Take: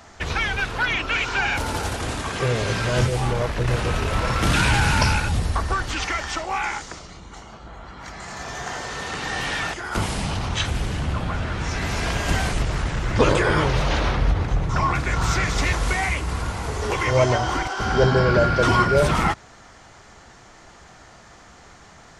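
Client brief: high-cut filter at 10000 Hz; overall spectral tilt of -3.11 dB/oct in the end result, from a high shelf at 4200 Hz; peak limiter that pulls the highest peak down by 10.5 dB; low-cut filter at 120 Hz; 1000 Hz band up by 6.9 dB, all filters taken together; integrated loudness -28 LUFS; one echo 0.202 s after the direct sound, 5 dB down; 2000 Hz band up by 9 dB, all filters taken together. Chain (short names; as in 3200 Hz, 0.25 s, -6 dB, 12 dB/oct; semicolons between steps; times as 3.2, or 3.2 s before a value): HPF 120 Hz; LPF 10000 Hz; bell 1000 Hz +5.5 dB; bell 2000 Hz +8.5 dB; high shelf 4200 Hz +6.5 dB; limiter -10 dBFS; echo 0.202 s -5 dB; gain -9.5 dB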